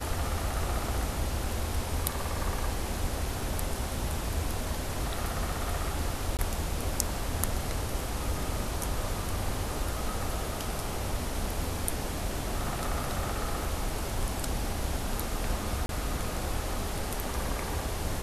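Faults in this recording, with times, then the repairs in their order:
6.37–6.39 gap 18 ms
15.86–15.89 gap 32 ms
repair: interpolate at 6.37, 18 ms; interpolate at 15.86, 32 ms

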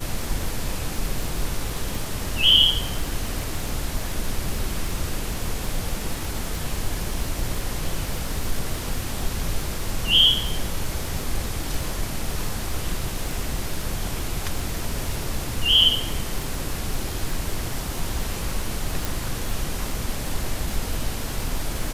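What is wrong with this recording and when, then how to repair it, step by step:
crackle 48/s -27 dBFS
19.05 pop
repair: de-click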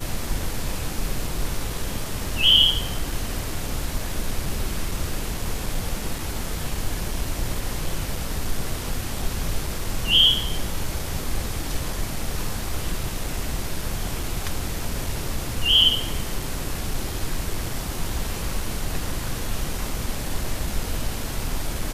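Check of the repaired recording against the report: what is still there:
19.05 pop

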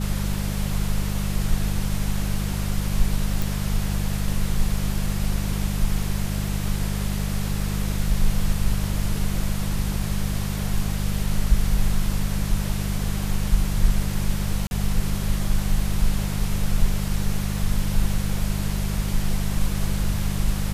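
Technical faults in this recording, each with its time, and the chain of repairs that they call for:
hum 50 Hz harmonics 4 -26 dBFS
3.42 pop
14.67–14.71 gap 41 ms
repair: de-click; de-hum 50 Hz, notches 4; interpolate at 14.67, 41 ms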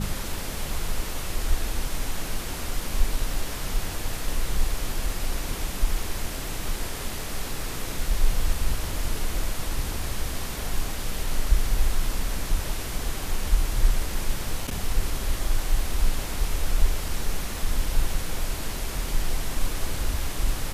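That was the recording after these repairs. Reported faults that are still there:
none

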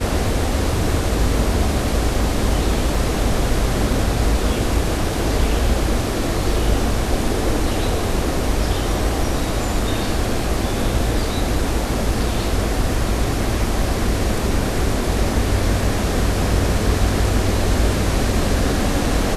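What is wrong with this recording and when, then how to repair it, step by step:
2.95 gap 2 ms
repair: interpolate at 2.95, 2 ms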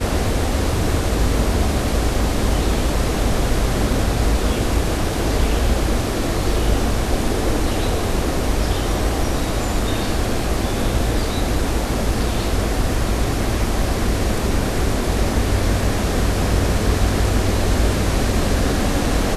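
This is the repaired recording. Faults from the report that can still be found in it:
none

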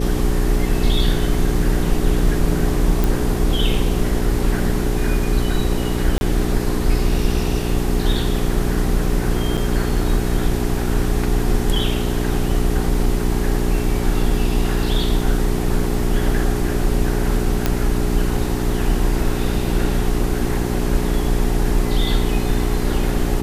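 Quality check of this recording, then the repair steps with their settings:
hum 60 Hz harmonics 7 -23 dBFS
3.04 pop
6.18–6.21 gap 31 ms
9.57–9.58 gap 6.5 ms
17.66 pop -3 dBFS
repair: de-click; de-hum 60 Hz, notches 7; interpolate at 6.18, 31 ms; interpolate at 9.57, 6.5 ms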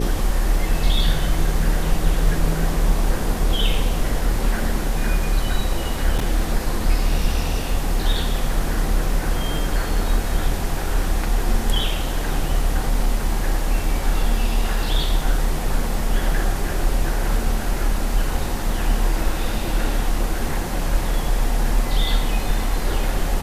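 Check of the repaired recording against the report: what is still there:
none

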